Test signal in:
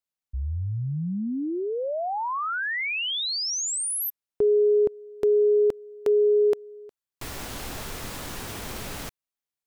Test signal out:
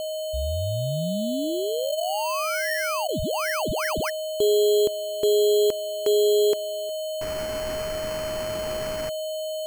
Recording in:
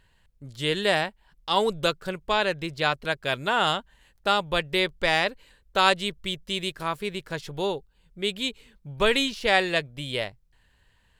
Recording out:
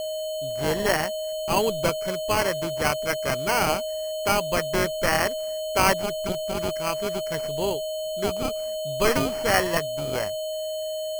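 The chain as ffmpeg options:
ffmpeg -i in.wav -af "aeval=exprs='val(0)+0.0447*sin(2*PI*4300*n/s)':channel_layout=same,acrusher=samples=12:mix=1:aa=0.000001" out.wav

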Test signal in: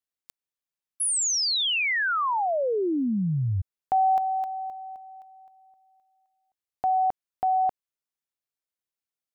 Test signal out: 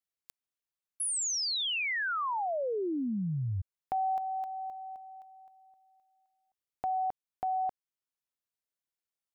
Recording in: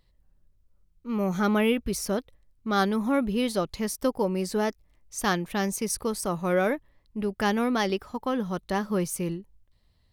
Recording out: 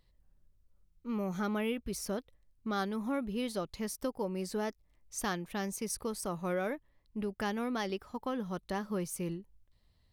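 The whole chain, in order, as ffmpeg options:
ffmpeg -i in.wav -af "acompressor=threshold=-29dB:ratio=2:attack=5.8:release=789:detection=rms,volume=-3.5dB" out.wav

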